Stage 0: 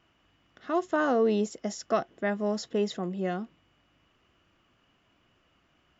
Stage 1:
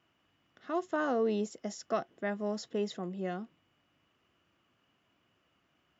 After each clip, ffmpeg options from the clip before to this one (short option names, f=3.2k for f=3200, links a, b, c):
-af "highpass=89,volume=-5.5dB"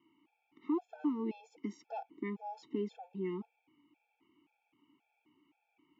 -filter_complex "[0:a]asplit=3[a][b][c];[a]bandpass=f=300:t=q:w=8,volume=0dB[d];[b]bandpass=f=870:t=q:w=8,volume=-6dB[e];[c]bandpass=f=2.24k:t=q:w=8,volume=-9dB[f];[d][e][f]amix=inputs=3:normalize=0,acompressor=threshold=-49dB:ratio=2,afftfilt=real='re*gt(sin(2*PI*1.9*pts/sr)*(1-2*mod(floor(b*sr/1024/450),2)),0)':imag='im*gt(sin(2*PI*1.9*pts/sr)*(1-2*mod(floor(b*sr/1024/450),2)),0)':win_size=1024:overlap=0.75,volume=15.5dB"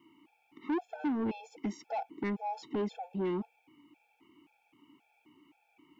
-af "asoftclip=type=tanh:threshold=-36.5dB,volume=8.5dB"